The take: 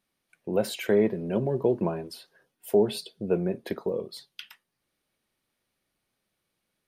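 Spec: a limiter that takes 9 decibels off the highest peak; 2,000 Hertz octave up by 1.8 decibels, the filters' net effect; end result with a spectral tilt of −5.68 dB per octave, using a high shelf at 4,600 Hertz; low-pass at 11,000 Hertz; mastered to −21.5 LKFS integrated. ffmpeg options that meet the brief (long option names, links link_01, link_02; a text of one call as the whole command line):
ffmpeg -i in.wav -af "lowpass=11000,equalizer=frequency=2000:width_type=o:gain=3.5,highshelf=frequency=4600:gain=-6.5,volume=10.5dB,alimiter=limit=-8.5dB:level=0:latency=1" out.wav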